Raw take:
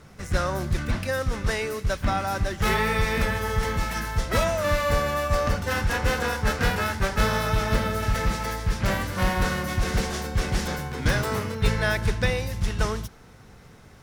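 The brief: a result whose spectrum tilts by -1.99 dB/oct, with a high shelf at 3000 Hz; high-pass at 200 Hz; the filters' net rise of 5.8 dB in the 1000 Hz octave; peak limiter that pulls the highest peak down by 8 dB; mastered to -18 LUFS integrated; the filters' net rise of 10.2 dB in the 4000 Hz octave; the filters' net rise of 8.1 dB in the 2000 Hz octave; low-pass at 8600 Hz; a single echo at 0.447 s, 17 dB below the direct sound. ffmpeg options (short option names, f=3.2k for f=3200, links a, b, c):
-af "highpass=200,lowpass=8.6k,equalizer=f=1k:t=o:g=4.5,equalizer=f=2k:t=o:g=5,highshelf=f=3k:g=7.5,equalizer=f=4k:t=o:g=5.5,alimiter=limit=-11dB:level=0:latency=1,aecho=1:1:447:0.141,volume=4dB"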